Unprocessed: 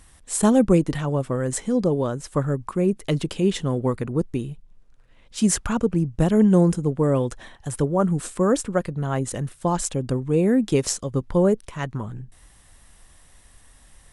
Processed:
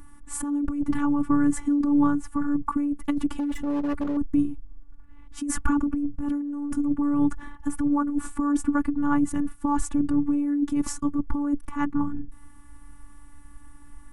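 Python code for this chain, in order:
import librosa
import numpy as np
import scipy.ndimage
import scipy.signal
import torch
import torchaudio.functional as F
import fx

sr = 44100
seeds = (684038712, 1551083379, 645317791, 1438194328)

y = fx.curve_eq(x, sr, hz=(310.0, 510.0, 1000.0, 3900.0, 11000.0), db=(0, -28, -1, -24, -14))
y = fx.over_compress(y, sr, threshold_db=-26.0, ratio=-1.0)
y = fx.robotise(y, sr, hz=288.0)
y = fx.overload_stage(y, sr, gain_db=31.0, at=(3.38, 4.17))
y = y * librosa.db_to_amplitude(7.5)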